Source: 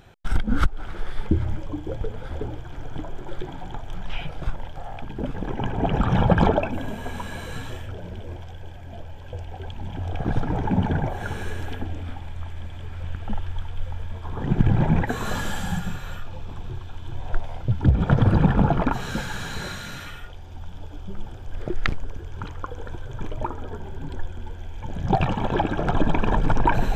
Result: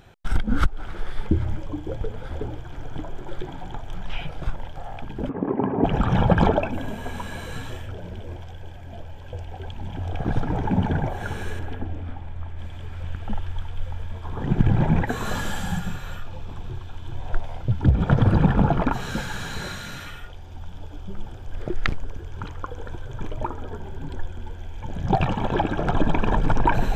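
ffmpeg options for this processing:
-filter_complex "[0:a]asettb=1/sr,asplit=3[a][b][c];[a]atrim=end=5.294[d];[b]atrim=start=5.29:end=5.84,asetpts=PTS-STARTPTS,afade=t=in:d=0.004:c=qsin,afade=t=out:st=0.546:d=0.004:c=qsin,highpass=140,equalizer=f=190:t=q:w=4:g=5,equalizer=f=270:t=q:w=4:g=10,equalizer=f=400:t=q:w=4:g=9,equalizer=f=590:t=q:w=4:g=4,equalizer=f=1.1k:t=q:w=4:g=8,equalizer=f=1.5k:t=q:w=4:g=-6,lowpass=f=2k:w=0.5412,lowpass=f=2k:w=1.3066[e];[c]atrim=start=5.836[f];[d][e]acrossfade=d=0.004:c1=hsin:c2=qsin[g];[g][f]acrossfade=d=0.004:c1=qsin:c2=hsin,asettb=1/sr,asplit=3[h][i][j];[h]atrim=end=11.594[k];[i]atrim=start=11.59:end=12.59,asetpts=PTS-STARTPTS,afade=t=in:d=0.004:c=qsin,afade=t=out:st=0.996:d=0.004:c=qsin,highshelf=f=2.9k:g=-12[l];[j]atrim=start=12.586[m];[k][l]acrossfade=d=0.004:c1=hsin:c2=qsin[n];[n][m]acrossfade=d=0.004:c1=qsin:c2=hsin"

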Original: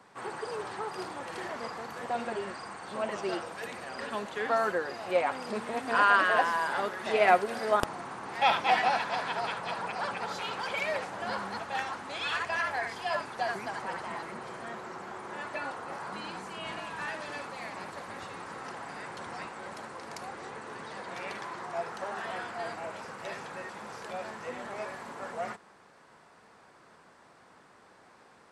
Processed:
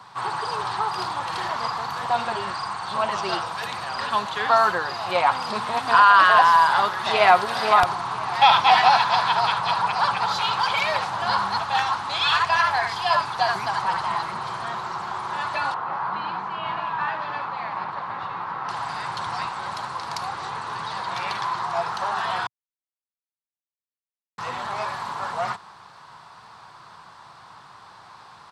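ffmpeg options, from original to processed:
-filter_complex "[0:a]asplit=2[a][b];[b]afade=t=in:st=6.86:d=0.01,afade=t=out:st=7.43:d=0.01,aecho=0:1:500|1000|1500:0.421697|0.0843393|0.0168679[c];[a][c]amix=inputs=2:normalize=0,asettb=1/sr,asplit=3[d][e][f];[d]atrim=end=15.744[g];[e]atrim=start=15.74:end=18.69,asetpts=PTS-STARTPTS,afade=t=in:d=0.004:c=qsin,afade=t=out:st=2.946:d=0.004:c=qsin,highpass=140,lowpass=2.1k[h];[f]atrim=start=18.686[i];[g][h]acrossfade=d=0.004:c1=hsin:c2=qsin[j];[j][i]acrossfade=d=0.004:c1=qsin:c2=hsin,asplit=3[k][l][m];[k]atrim=end=22.47,asetpts=PTS-STARTPTS,afade=t=out:st=22.466:d=0.004:c=hsin[n];[l]atrim=start=22.47:end=24.38,asetpts=PTS-STARTPTS,volume=0[o];[m]atrim=start=24.38,asetpts=PTS-STARTPTS,afade=t=in:d=0.004:c=hsin[p];[n][o][p]concat=n=3:v=0:a=1,equalizer=f=125:t=o:w=1:g=7,equalizer=f=250:t=o:w=1:g=-9,equalizer=f=500:t=o:w=1:g=-9,equalizer=f=1k:t=o:w=1:g=10,equalizer=f=2k:t=o:w=1:g=-5,equalizer=f=4k:t=o:w=1:g=9,equalizer=f=8k:t=o:w=1:g=-4,alimiter=level_in=12dB:limit=-1dB:release=50:level=0:latency=1,volume=-3.5dB"

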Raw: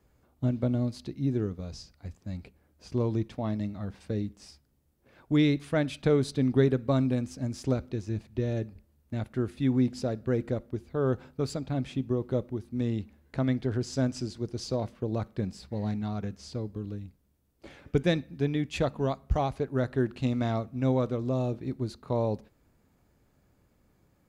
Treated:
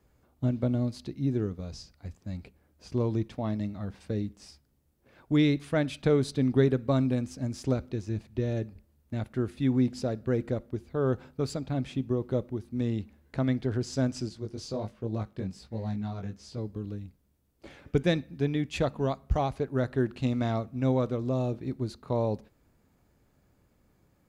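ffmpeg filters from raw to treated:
-filter_complex "[0:a]asettb=1/sr,asplit=3[a][b][c];[a]atrim=end=14.294[d];[b]atrim=start=14.29:end=16.58,asetpts=PTS-STARTPTS,afade=t=in:d=0.004:c=qsin,afade=t=out:st=2.286:d=0.004:c=qsin,flanger=delay=17.5:depth=3.6:speed=1.3[e];[c]atrim=start=16.576[f];[d][e]acrossfade=d=0.004:c1=hsin:c2=qsin[g];[g][f]acrossfade=d=0.004:c1=qsin:c2=hsin"

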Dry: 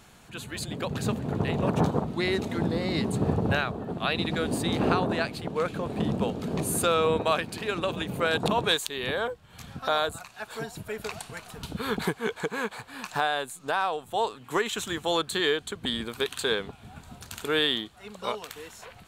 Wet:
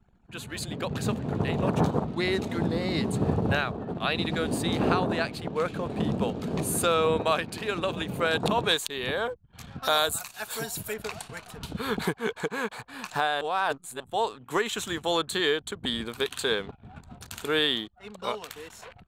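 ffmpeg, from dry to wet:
-filter_complex "[0:a]asettb=1/sr,asplit=3[a][b][c];[a]atrim=end=9.834[d];[b]atrim=start=9.83:end=10.94,asetpts=PTS-STARTPTS,afade=t=in:d=0.004:c=qsin,afade=t=out:st=1.106:d=0.004:c=qsin,aemphasis=mode=production:type=75kf[e];[c]atrim=start=10.936[f];[d][e]acrossfade=d=0.004:c1=hsin:c2=qsin[g];[g][f]acrossfade=d=0.004:c1=qsin:c2=hsin,asplit=3[h][i][j];[h]atrim=end=13.412[k];[i]atrim=start=13.408:end=14.002,asetpts=PTS-STARTPTS,areverse[l];[j]atrim=start=13.998[m];[k][l]acrossfade=d=0.004:c1=hsin:c2=hsin[n];[n][m]acrossfade=d=0.004:c1=hsin:c2=hsin,anlmdn=0.01"

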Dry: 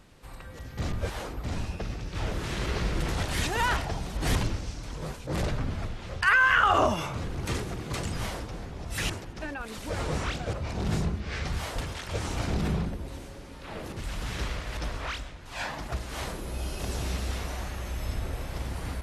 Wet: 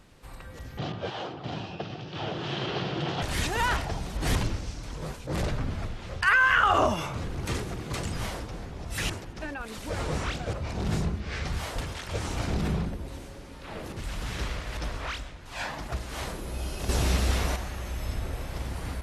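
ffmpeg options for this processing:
-filter_complex "[0:a]asplit=3[a][b][c];[a]afade=t=out:st=0.77:d=0.02[d];[b]highpass=f=120:w=0.5412,highpass=f=120:w=1.3066,equalizer=f=140:t=q:w=4:g=5,equalizer=f=230:t=q:w=4:g=-4,equalizer=f=350:t=q:w=4:g=4,equalizer=f=740:t=q:w=4:g=7,equalizer=f=2.1k:t=q:w=4:g=-5,equalizer=f=3.1k:t=q:w=4:g=8,lowpass=f=5k:w=0.5412,lowpass=f=5k:w=1.3066,afade=t=in:st=0.77:d=0.02,afade=t=out:st=3.21:d=0.02[e];[c]afade=t=in:st=3.21:d=0.02[f];[d][e][f]amix=inputs=3:normalize=0,asplit=3[g][h][i];[g]atrim=end=16.892[j];[h]atrim=start=16.888:end=17.562,asetpts=PTS-STARTPTS,volume=6.5dB[k];[i]atrim=start=17.558[l];[j][k]acrossfade=d=0.004:c1=hsin:c2=hsin[m];[m][l]acrossfade=d=0.004:c1=hsin:c2=hsin"

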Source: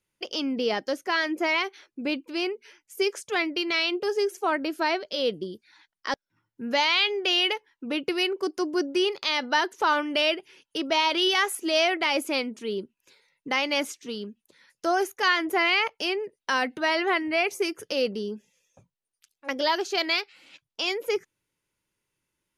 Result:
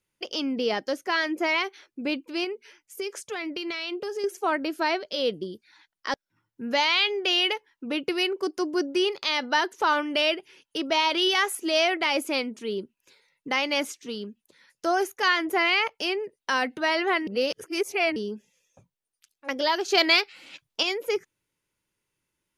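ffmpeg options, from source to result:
-filter_complex "[0:a]asettb=1/sr,asplit=3[a][b][c];[a]atrim=end=2.444[d];[b]atrim=start=2.44:end=4.24,asetpts=PTS-STARTPTS,afade=t=in:d=0.004:c=qsin,afade=t=out:st=1.796:d=0.004:c=qsin,acompressor=threshold=-28dB:ratio=6:attack=3.2:release=140:knee=1:detection=peak[e];[c]atrim=start=4.236[f];[d][e]acrossfade=d=0.004:c1=hsin:c2=qsin[g];[g][f]acrossfade=d=0.004:c1=qsin:c2=hsin,asettb=1/sr,asplit=3[h][i][j];[h]atrim=end=19.884[k];[i]atrim=start=19.88:end=20.83,asetpts=PTS-STARTPTS,afade=t=in:d=0.004:c=qsin,afade=t=out:st=0.946:d=0.004:c=qsin,acontrast=48[l];[j]atrim=start=20.826[m];[k][l]acrossfade=d=0.004:c1=hsin:c2=qsin[n];[n][m]acrossfade=d=0.004:c1=qsin:c2=hsin,asplit=3[o][p][q];[o]atrim=end=17.272[r];[p]atrim=start=17.268:end=18.162,asetpts=PTS-STARTPTS,areverse[s];[q]atrim=start=18.158[t];[r][s]acrossfade=d=0.004:c1=hsin:c2=hsin[u];[u][t]acrossfade=d=0.004:c1=hsin:c2=hsin"

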